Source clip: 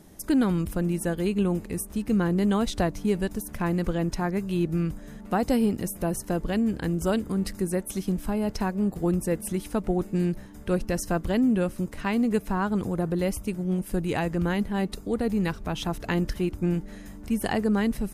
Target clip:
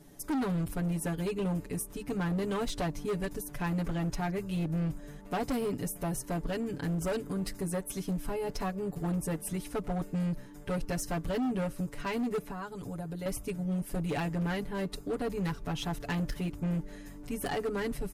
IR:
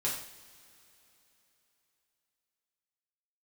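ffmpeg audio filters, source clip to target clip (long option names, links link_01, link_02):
-filter_complex "[0:a]asettb=1/sr,asplit=3[link_01][link_02][link_03];[link_01]atrim=end=12.444[link_04];[link_02]atrim=start=12.44:end=13.26,asetpts=PTS-STARTPTS,afade=type=in:duration=0.004:curve=qsin,afade=type=out:start_time=0.816:duration=0.004:curve=qsin,acrossover=split=94|3400[link_05][link_06][link_07];[link_05]acompressor=threshold=-46dB:ratio=4[link_08];[link_06]acompressor=threshold=-33dB:ratio=4[link_09];[link_07]acompressor=threshold=-53dB:ratio=4[link_10];[link_08][link_09][link_10]amix=inputs=3:normalize=0[link_11];[link_03]atrim=start=13.256[link_12];[link_04][link_11]acrossfade=duration=0.004:curve1=hsin:curve2=qsin[link_13];[link_13][link_12]acrossfade=duration=0.004:curve1=qsin:curve2=hsin,aecho=1:1:7:0.99,volume=21.5dB,asoftclip=hard,volume=-21.5dB,volume=-6.5dB"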